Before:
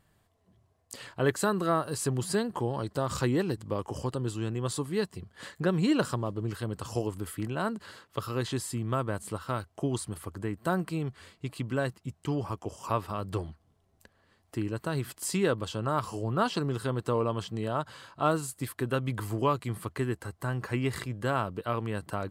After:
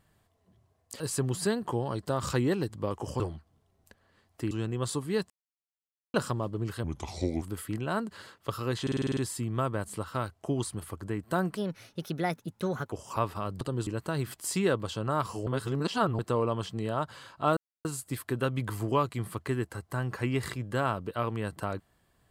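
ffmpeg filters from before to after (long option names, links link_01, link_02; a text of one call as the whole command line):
ffmpeg -i in.wav -filter_complex "[0:a]asplit=22[link_01][link_02][link_03][link_04][link_05][link_06][link_07][link_08][link_09][link_10][link_11][link_12][link_13][link_14][link_15][link_16][link_17][link_18][link_19][link_20][link_21][link_22];[link_01]atrim=end=1.002[link_23];[link_02]atrim=start=1.878:end=4.082[link_24];[link_03]atrim=start=13.338:end=14.652[link_25];[link_04]atrim=start=4.338:end=5.13,asetpts=PTS-STARTPTS,afade=type=out:start_time=0.788:duration=0.004:curve=hsin[link_26];[link_05]atrim=start=5.13:end=5.97,asetpts=PTS-STARTPTS,volume=0[link_27];[link_06]atrim=start=5.97:end=6.674,asetpts=PTS-STARTPTS,afade=type=in:duration=0.004:curve=hsin[link_28];[link_07]atrim=start=6.67:end=7.11,asetpts=PTS-STARTPTS,asetrate=33516,aresample=44100[link_29];[link_08]atrim=start=7.106:end=8.562[link_30];[link_09]atrim=start=8.508:end=8.562[link_31];[link_10]atrim=start=8.508:end=8.562[link_32];[link_11]atrim=start=8.508:end=8.562[link_33];[link_12]atrim=start=8.508:end=8.562[link_34];[link_13]atrim=start=8.508:end=8.562[link_35];[link_14]atrim=start=8.508:end=8.562[link_36];[link_15]atrim=start=8.508:end=10.914[link_37];[link_16]atrim=start=10.91:end=12.65,asetpts=PTS-STARTPTS,asetrate=56889,aresample=44100[link_38];[link_17]atrim=start=12.646:end=13.342[link_39];[link_18]atrim=start=4.078:end=4.342[link_40];[link_19]atrim=start=14.648:end=16.252[link_41];[link_20]atrim=start=16.248:end=16.972,asetpts=PTS-STARTPTS,areverse[link_42];[link_21]atrim=start=16.968:end=18.35,asetpts=PTS-STARTPTS,afade=type=out:start_time=1.378:duration=0.004:curve=hsin,apad=pad_dur=0.28[link_43];[link_22]atrim=start=18.35,asetpts=PTS-STARTPTS,afade=type=in:duration=0.004:curve=hsin[link_44];[link_23][link_24]acrossfade=duration=0.004:curve1=hsin:curve2=hsin[link_45];[link_45][link_25]acrossfade=duration=0.004:curve1=hsin:curve2=hsin[link_46];[link_26][link_27][link_28]concat=n=3:v=0:a=1[link_47];[link_46][link_47]acrossfade=duration=0.004:curve1=hsin:curve2=hsin[link_48];[link_48][link_29]acrossfade=duration=0.004:curve1=hsin:curve2=hsin[link_49];[link_49][link_30]acrossfade=duration=0.004:curve1=hsin:curve2=hsin[link_50];[link_50][link_31]acrossfade=duration=0.004:curve1=hsin:curve2=hsin[link_51];[link_51][link_32]acrossfade=duration=0.004:curve1=hsin:curve2=hsin[link_52];[link_52][link_33]acrossfade=duration=0.004:curve1=hsin:curve2=hsin[link_53];[link_53][link_34]acrossfade=duration=0.004:curve1=hsin:curve2=hsin[link_54];[link_54][link_35]acrossfade=duration=0.004:curve1=hsin:curve2=hsin[link_55];[link_55][link_36]acrossfade=duration=0.004:curve1=hsin:curve2=hsin[link_56];[link_56][link_37]acrossfade=duration=0.004:curve1=hsin:curve2=hsin[link_57];[link_57][link_38]acrossfade=duration=0.004:curve1=hsin:curve2=hsin[link_58];[link_58][link_39]acrossfade=duration=0.004:curve1=hsin:curve2=hsin[link_59];[link_59][link_40]acrossfade=duration=0.004:curve1=hsin:curve2=hsin[link_60];[link_60][link_41]acrossfade=duration=0.004:curve1=hsin:curve2=hsin[link_61];[link_61][link_42]acrossfade=duration=0.004:curve1=hsin:curve2=hsin[link_62];[link_43][link_44]concat=n=2:v=0:a=1[link_63];[link_62][link_63]acrossfade=duration=0.004:curve1=hsin:curve2=hsin" out.wav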